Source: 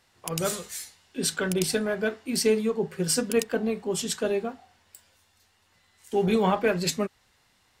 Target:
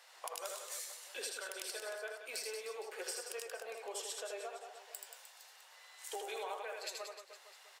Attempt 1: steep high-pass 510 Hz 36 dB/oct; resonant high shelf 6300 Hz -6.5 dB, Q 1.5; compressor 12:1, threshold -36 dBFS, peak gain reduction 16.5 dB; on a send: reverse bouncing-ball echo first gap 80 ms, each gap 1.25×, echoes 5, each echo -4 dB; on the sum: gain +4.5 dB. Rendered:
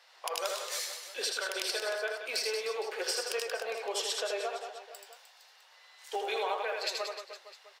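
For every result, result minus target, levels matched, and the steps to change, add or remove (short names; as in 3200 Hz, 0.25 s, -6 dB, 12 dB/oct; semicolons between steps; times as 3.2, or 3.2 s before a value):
compressor: peak gain reduction -9.5 dB; 8000 Hz band -4.5 dB
change: compressor 12:1, threshold -46.5 dBFS, peak gain reduction 26 dB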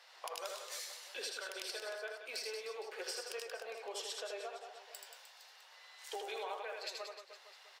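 8000 Hz band -4.0 dB
remove: resonant high shelf 6300 Hz -6.5 dB, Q 1.5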